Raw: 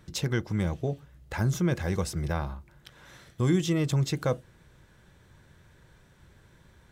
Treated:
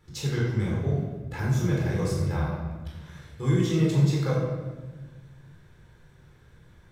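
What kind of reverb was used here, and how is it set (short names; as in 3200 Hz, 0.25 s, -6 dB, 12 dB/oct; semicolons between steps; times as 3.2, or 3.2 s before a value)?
shoebox room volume 950 m³, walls mixed, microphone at 4.1 m; gain -8.5 dB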